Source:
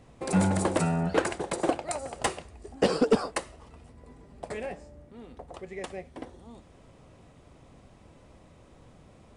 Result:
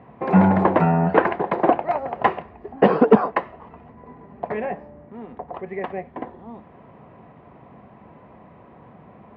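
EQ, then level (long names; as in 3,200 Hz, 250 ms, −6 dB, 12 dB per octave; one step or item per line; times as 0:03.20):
loudspeaker in its box 100–2,500 Hz, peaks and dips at 150 Hz +3 dB, 210 Hz +7 dB, 410 Hz +4 dB, 720 Hz +7 dB, 1,000 Hz +9 dB, 1,800 Hz +4 dB
+5.0 dB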